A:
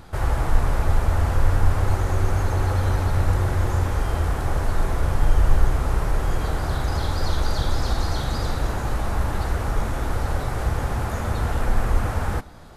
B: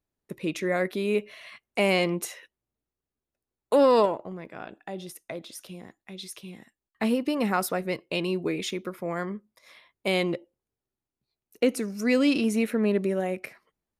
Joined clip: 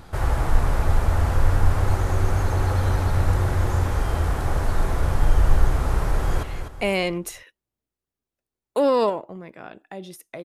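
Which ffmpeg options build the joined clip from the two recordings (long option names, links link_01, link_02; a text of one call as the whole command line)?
ffmpeg -i cue0.wav -i cue1.wav -filter_complex "[0:a]apad=whole_dur=10.44,atrim=end=10.44,atrim=end=6.432[link_01];[1:a]atrim=start=1.388:end=5.4[link_02];[link_01][link_02]acrossfade=duration=0.004:curve1=hsin:curve2=hsin,asplit=2[link_03][link_04];[link_04]afade=type=in:start_time=6.1:duration=0.01,afade=type=out:start_time=6.43:duration=0.01,aecho=0:1:250|500|750|1000:0.375837|0.150335|0.060134|0.0240536[link_05];[link_03][link_05]amix=inputs=2:normalize=0" out.wav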